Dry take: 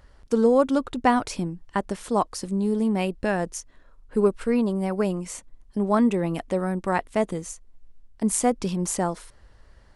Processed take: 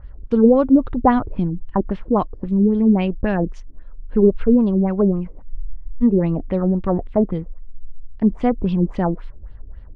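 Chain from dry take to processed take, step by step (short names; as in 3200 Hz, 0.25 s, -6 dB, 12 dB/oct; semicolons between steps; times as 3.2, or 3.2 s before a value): LFO low-pass sine 3.7 Hz 310–3800 Hz; RIAA curve playback; spectral freeze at 5.53, 0.50 s; gain -1 dB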